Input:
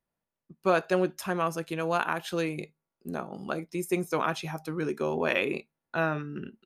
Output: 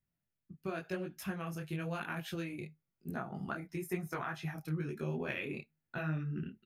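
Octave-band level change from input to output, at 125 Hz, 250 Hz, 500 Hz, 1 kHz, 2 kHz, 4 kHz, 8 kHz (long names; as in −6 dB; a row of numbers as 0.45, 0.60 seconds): −1.5, −7.0, −13.0, −13.0, −9.5, −11.0, −10.5 decibels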